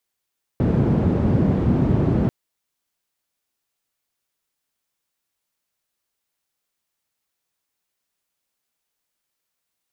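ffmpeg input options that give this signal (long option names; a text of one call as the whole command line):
ffmpeg -f lavfi -i "anoisesrc=color=white:duration=1.69:sample_rate=44100:seed=1,highpass=frequency=87,lowpass=frequency=190,volume=9.4dB" out.wav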